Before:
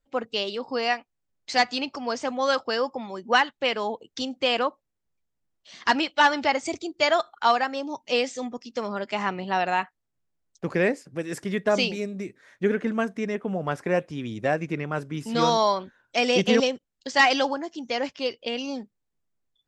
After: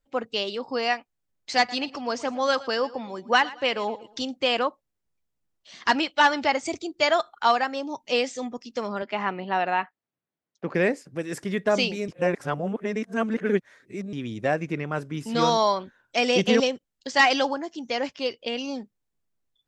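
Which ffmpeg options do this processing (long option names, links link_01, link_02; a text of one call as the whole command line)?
ffmpeg -i in.wav -filter_complex "[0:a]asettb=1/sr,asplit=3[link_01][link_02][link_03];[link_01]atrim=end=1.574[link_04];[link_02]atrim=start=1.57:end=4.31,asetpts=PTS-STARTPTS,afade=type=in:duration=0.004:curve=qsin,afade=type=out:start_time=2.736:duration=0.004:curve=qsin,aecho=1:1:115|230|345:0.112|0.037|0.0122,atrim=end_sample=120834[link_05];[link_03]atrim=start=4.306[link_06];[link_04][link_05]acrossfade=duration=0.004:curve1=hsin:curve2=qsin[link_07];[link_07][link_06]acrossfade=duration=0.004:curve1=qsin:curve2=hsin,asettb=1/sr,asplit=3[link_08][link_09][link_10];[link_08]atrim=end=9.024[link_11];[link_09]atrim=start=9.02:end=10.75,asetpts=PTS-STARTPTS,afade=type=in:duration=0.004:curve=qsin,afade=type=out:start_time=1.726:duration=0.004:curve=qsin,highpass=170,lowpass=3200[link_12];[link_10]atrim=start=10.746[link_13];[link_11][link_12]acrossfade=duration=0.004:curve1=hsin:curve2=qsin[link_14];[link_14][link_13]acrossfade=duration=0.004:curve1=qsin:curve2=hsin,asplit=3[link_15][link_16][link_17];[link_15]atrim=end=12.082[link_18];[link_16]atrim=start=12.078:end=14.132,asetpts=PTS-STARTPTS,areverse[link_19];[link_17]atrim=start=14.128[link_20];[link_18][link_19]acrossfade=duration=0.004:curve1=hsin:curve2=hsin[link_21];[link_21][link_20]acrossfade=duration=0.004:curve1=hsin:curve2=hsin" out.wav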